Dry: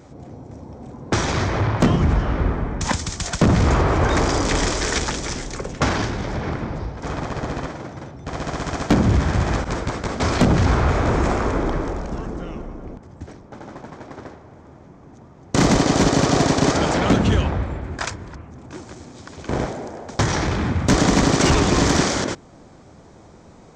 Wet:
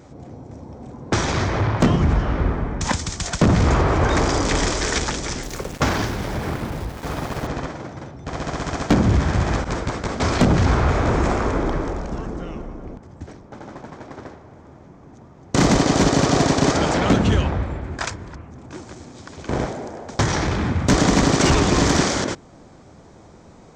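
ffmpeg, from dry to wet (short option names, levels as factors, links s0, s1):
-filter_complex "[0:a]asettb=1/sr,asplit=3[s0][s1][s2];[s0]atrim=end=5.434[s3];[s1]atrim=start=5.43:end=7.47,asetpts=PTS-STARTPTS,afade=t=in:d=0.004:c=qsin,afade=t=out:st=2.036:d=0.004:c=qsin,aeval=exprs='val(0)*gte(abs(val(0)),0.0237)':c=same[s4];[s2]atrim=start=7.466[s5];[s3][s4]acrossfade=d=0.004:c1=hsin:c2=qsin[s6];[s6][s5]acrossfade=d=0.004:c1=qsin:c2=hsin"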